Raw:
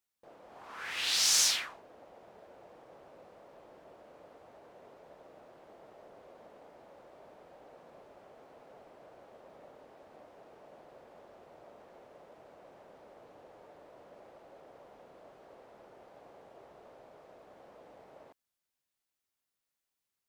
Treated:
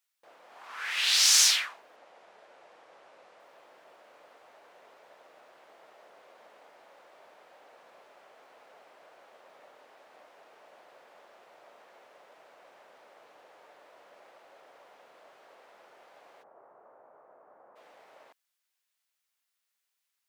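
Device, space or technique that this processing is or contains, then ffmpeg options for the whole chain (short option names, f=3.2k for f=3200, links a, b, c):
filter by subtraction: -filter_complex "[0:a]asettb=1/sr,asplit=3[a][b][c];[a]atrim=end=1.964[d];[b]atrim=start=1.96:end=3.4,asetpts=PTS-STARTPTS,afade=t=in:d=0.004:c=qsin,afade=t=out:st=1.436:d=0.004:c=qsin,lowpass=9.5k[e];[c]atrim=start=3.396[f];[d][e]acrossfade=d=0.004:c1=hsin:c2=qsin[g];[g][f]acrossfade=d=0.004:c1=qsin:c2=hsin,asplit=3[h][i][j];[h]afade=t=out:st=16.42:d=0.02[k];[i]lowpass=f=1.3k:w=0.5412,lowpass=f=1.3k:w=1.3066,afade=t=in:st=16.42:d=0.02,afade=t=out:st=17.75:d=0.02[l];[j]afade=t=in:st=17.75:d=0.02[m];[k][l][m]amix=inputs=3:normalize=0,asplit=2[n][o];[o]lowpass=1.9k,volume=-1[p];[n][p]amix=inputs=2:normalize=0,volume=4.5dB"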